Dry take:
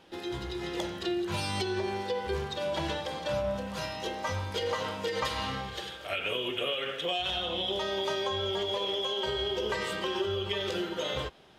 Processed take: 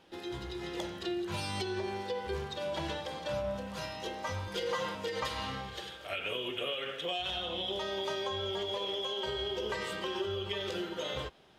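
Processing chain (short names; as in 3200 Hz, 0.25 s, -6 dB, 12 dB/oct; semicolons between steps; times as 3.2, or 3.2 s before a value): 4.47–4.95 comb 5.7 ms, depth 75%; gain -4 dB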